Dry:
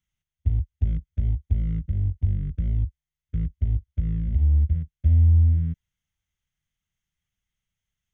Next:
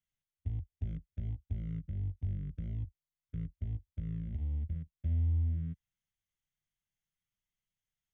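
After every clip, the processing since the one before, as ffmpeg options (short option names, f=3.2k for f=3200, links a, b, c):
-af "equalizer=f=63:w=2:g=-11,volume=-8.5dB"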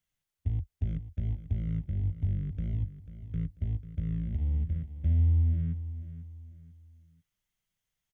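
-af "aecho=1:1:492|984|1476:0.224|0.0784|0.0274,volume=6dB"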